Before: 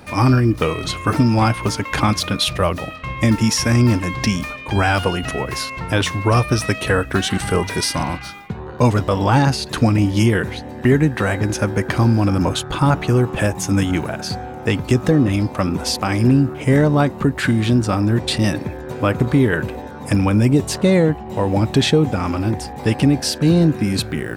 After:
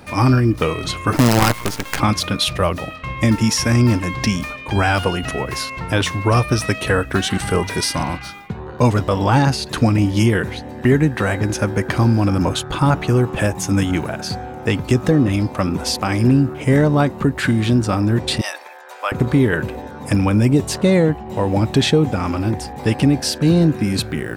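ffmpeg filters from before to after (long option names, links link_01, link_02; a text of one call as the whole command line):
ffmpeg -i in.wav -filter_complex "[0:a]asettb=1/sr,asplit=3[link_01][link_02][link_03];[link_01]atrim=end=1.164[link_04];[link_02]atrim=start=1.16:end=2,asetpts=PTS-STARTPTS,afade=type=in:duration=0.004:curve=qsin,afade=type=out:start_time=0.836:duration=0.004:curve=qsin,acrusher=bits=3:dc=4:mix=0:aa=0.000001[link_05];[link_03]atrim=start=1.996[link_06];[link_04][link_05]acrossfade=duration=0.004:curve1=hsin:curve2=qsin[link_07];[link_07][link_06]acrossfade=duration=0.004:curve1=qsin:curve2=hsin,asettb=1/sr,asplit=3[link_08][link_09][link_10];[link_08]atrim=end=18.414[link_11];[link_09]atrim=start=18.41:end=19.12,asetpts=PTS-STARTPTS,afade=type=in:duration=0.004:curve=qsin,afade=type=out:start_time=0.706:duration=0.004:curve=qsin,highpass=frequency=690:width=0.5412,highpass=frequency=690:width=1.3066[link_12];[link_10]atrim=start=19.116[link_13];[link_11][link_12]acrossfade=duration=0.004:curve1=hsin:curve2=qsin[link_14];[link_14][link_13]acrossfade=duration=0.004:curve1=qsin:curve2=hsin" out.wav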